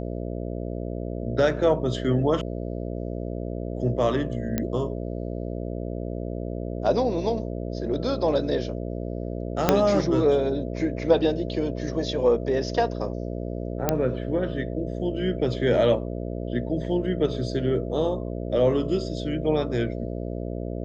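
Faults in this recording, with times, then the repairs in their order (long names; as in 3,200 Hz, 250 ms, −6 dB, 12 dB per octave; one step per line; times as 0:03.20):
mains buzz 60 Hz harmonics 11 −31 dBFS
0:04.58: click −11 dBFS
0:09.69: click −3 dBFS
0:13.89: click −6 dBFS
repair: click removal
hum removal 60 Hz, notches 11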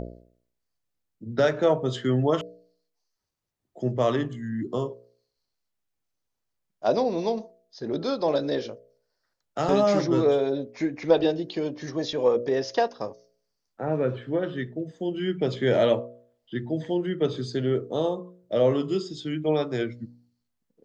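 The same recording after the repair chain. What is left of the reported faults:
0:09.69: click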